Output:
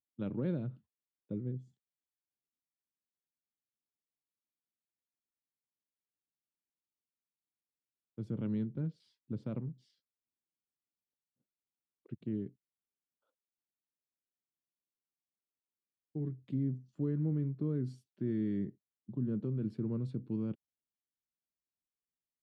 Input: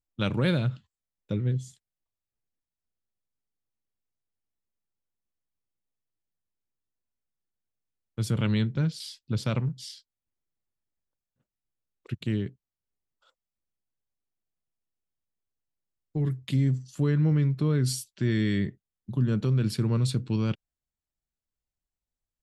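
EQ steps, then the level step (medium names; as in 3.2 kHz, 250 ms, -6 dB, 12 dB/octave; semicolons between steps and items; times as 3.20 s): band-pass filter 280 Hz, Q 1.2; -5.5 dB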